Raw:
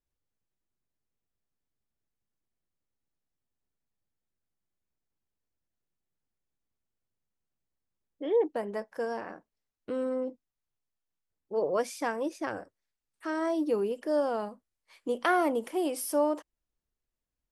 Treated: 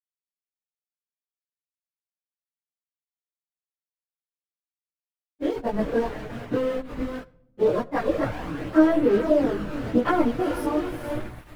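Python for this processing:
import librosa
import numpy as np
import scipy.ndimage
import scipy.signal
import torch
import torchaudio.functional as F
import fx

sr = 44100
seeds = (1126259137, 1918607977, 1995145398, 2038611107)

p1 = fx.transient(x, sr, attack_db=8, sustain_db=-9)
p2 = fx.over_compress(p1, sr, threshold_db=-26.0, ratio=-0.5)
p3 = p1 + (p2 * 10.0 ** (2.0 / 20.0))
p4 = fx.peak_eq(p3, sr, hz=7700.0, db=-6.0, octaves=0.25)
p5 = p4 + fx.echo_diffused(p4, sr, ms=628, feedback_pct=46, wet_db=-7.5, dry=0)
p6 = np.where(np.abs(p5) >= 10.0 ** (-27.5 / 20.0), p5, 0.0)
p7 = fx.bass_treble(p6, sr, bass_db=14, treble_db=-11)
p8 = fx.stretch_vocoder_free(p7, sr, factor=0.66)
p9 = fx.room_shoebox(p8, sr, seeds[0], volume_m3=2400.0, walls='furnished', distance_m=0.42)
p10 = fx.chorus_voices(p9, sr, voices=4, hz=0.41, base_ms=21, depth_ms=4.9, mix_pct=60)
y = p10 * 10.0 ** (2.0 / 20.0)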